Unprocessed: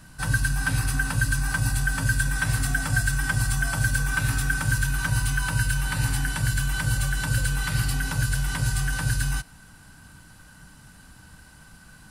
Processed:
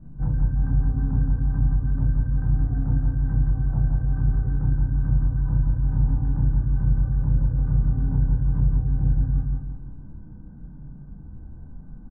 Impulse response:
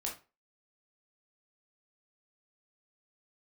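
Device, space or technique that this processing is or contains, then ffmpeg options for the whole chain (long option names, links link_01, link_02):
television next door: -filter_complex "[0:a]acompressor=threshold=-25dB:ratio=6,lowpass=290[link_01];[1:a]atrim=start_sample=2205[link_02];[link_01][link_02]afir=irnorm=-1:irlink=0,lowpass=frequency=1700:width=0.5412,lowpass=frequency=1700:width=1.3066,asettb=1/sr,asplit=3[link_03][link_04][link_05];[link_03]atrim=end=8.644[link_06];[link_04]atrim=start=8.64:end=9.07,asetpts=PTS-STARTPTS,afade=type=in:duration=0.004:curve=qsin,afade=type=out:start_time=0.426:duration=0.004:curve=qsin,equalizer=frequency=1100:width=1.9:gain=-7.5[link_07];[link_05]atrim=start=9.066[link_08];[link_06][link_07]acrossfade=duration=0.004:curve1=hsin:curve2=qsin[link_09];[link_09][link_08]acrossfade=duration=0.004:curve1=qsin:curve2=hsin,aecho=1:1:170|340|510|680|850|1020:0.708|0.319|0.143|0.0645|0.029|0.0131,volume=8dB"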